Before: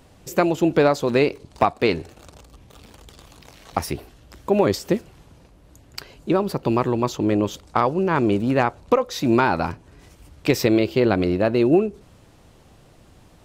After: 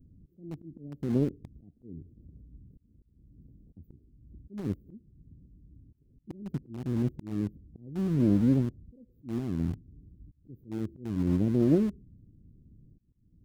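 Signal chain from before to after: inverse Chebyshev band-stop 1100–10000 Hz, stop band 70 dB; auto swell 0.41 s; in parallel at -6.5 dB: sample gate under -31 dBFS; on the sum: Doppler distortion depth 0.25 ms; gain -2.5 dB

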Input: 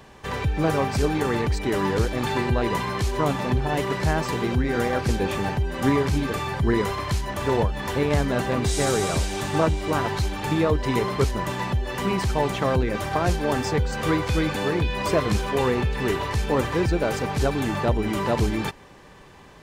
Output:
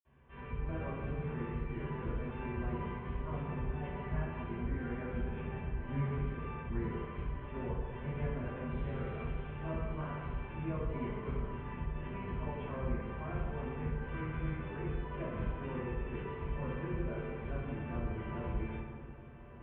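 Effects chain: octaver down 1 oct, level -1 dB; steep low-pass 3200 Hz 72 dB/oct; notch 810 Hz, Q 12; diffused feedback echo 1.392 s, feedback 45%, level -14.5 dB; reverb RT60 1.5 s, pre-delay 49 ms; gain +2.5 dB

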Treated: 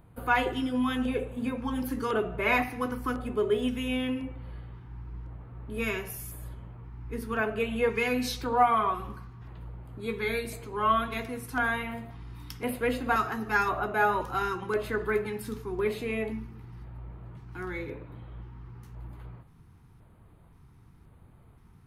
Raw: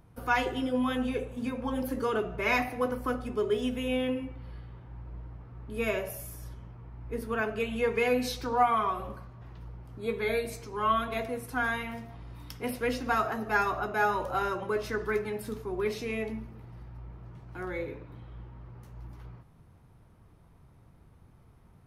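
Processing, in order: LFO notch square 0.95 Hz 590–5600 Hz; gain +2 dB

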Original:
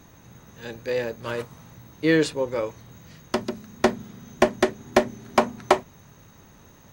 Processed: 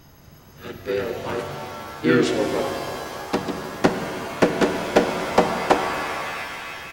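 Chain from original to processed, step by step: harmoniser -5 st -6 dB, -4 st 0 dB; shimmer reverb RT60 2.6 s, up +7 st, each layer -2 dB, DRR 6 dB; gain -2.5 dB

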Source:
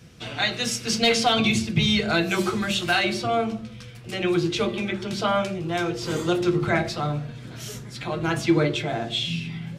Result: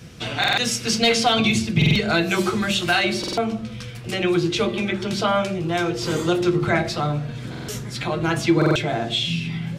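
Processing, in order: in parallel at +2 dB: compressor, threshold -32 dBFS, peak gain reduction 16.5 dB; on the sum: stuck buffer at 0.39/1.77/3.19/7.5/8.57, samples 2048, times 3

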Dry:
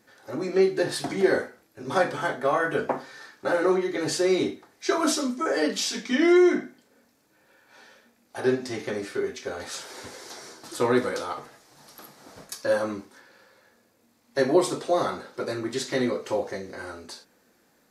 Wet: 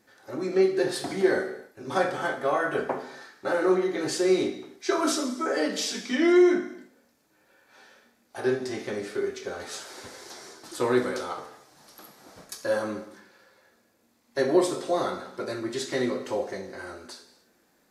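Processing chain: non-linear reverb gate 0.33 s falling, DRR 8 dB; gain -2.5 dB

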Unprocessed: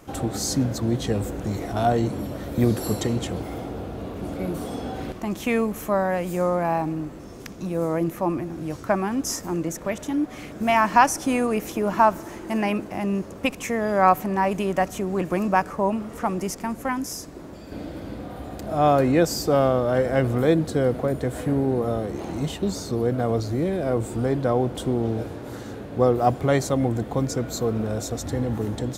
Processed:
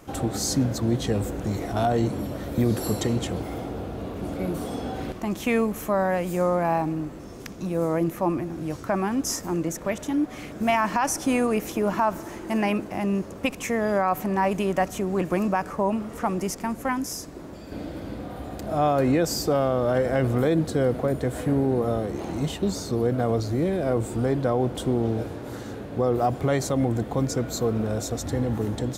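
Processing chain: limiter -12.5 dBFS, peak gain reduction 10.5 dB

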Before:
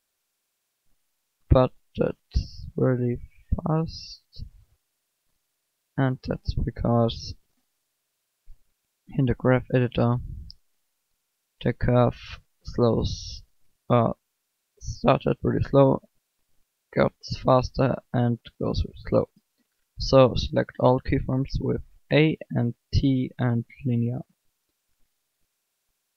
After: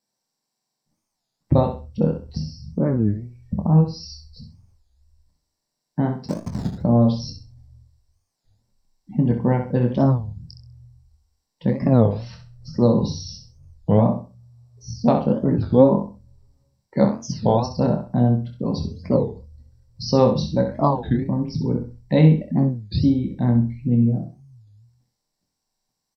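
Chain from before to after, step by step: 6.26–6.78 level-crossing sampler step -25 dBFS; doubler 25 ms -7.5 dB; feedback echo 65 ms, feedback 26%, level -8 dB; reverb RT60 0.20 s, pre-delay 3 ms, DRR 6.5 dB; record warp 33 1/3 rpm, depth 250 cents; gain -7.5 dB

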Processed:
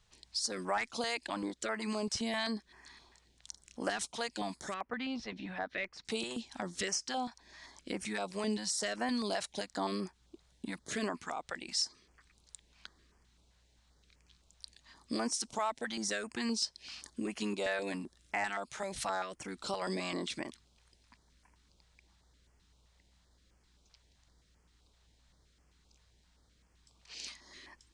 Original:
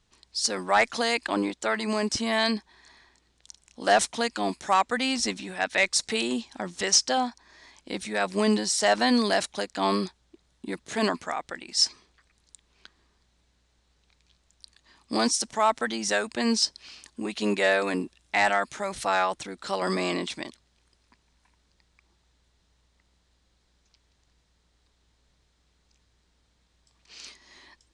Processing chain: compressor 2.5:1, threshold -35 dBFS, peak gain reduction 13 dB; 4.74–6.05 air absorption 290 m; stepped notch 7.7 Hz 280–3800 Hz

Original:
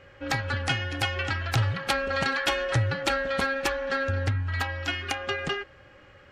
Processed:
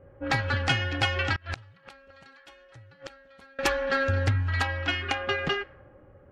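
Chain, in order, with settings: low-pass opened by the level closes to 580 Hz, open at -23 dBFS; 1.34–3.59 flipped gate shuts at -22 dBFS, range -28 dB; gain +2 dB

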